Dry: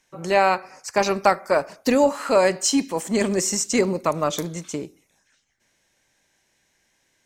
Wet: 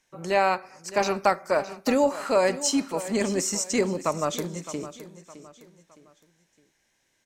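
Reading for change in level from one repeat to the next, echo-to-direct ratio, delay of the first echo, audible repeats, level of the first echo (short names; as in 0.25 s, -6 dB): -8.5 dB, -14.0 dB, 0.613 s, 3, -14.5 dB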